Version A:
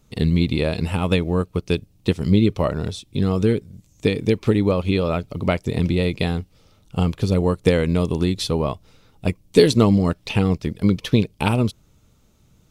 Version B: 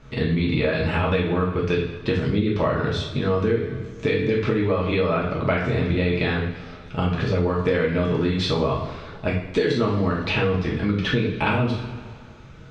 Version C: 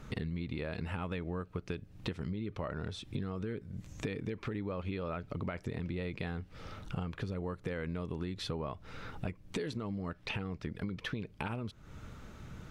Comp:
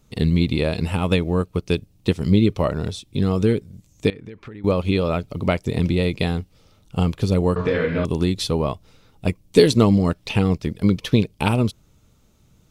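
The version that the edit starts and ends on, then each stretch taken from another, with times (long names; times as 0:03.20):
A
0:04.10–0:04.64: punch in from C
0:07.56–0:08.05: punch in from B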